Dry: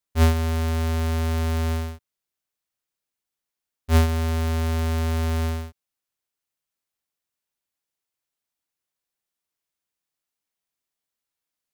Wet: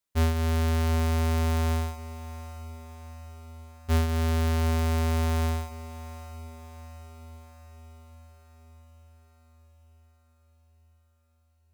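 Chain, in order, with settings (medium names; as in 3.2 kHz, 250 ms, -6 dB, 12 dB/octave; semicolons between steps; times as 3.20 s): compression 4:1, threshold -23 dBFS, peak gain reduction 7.5 dB; echo that smears into a reverb 770 ms, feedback 59%, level -14.5 dB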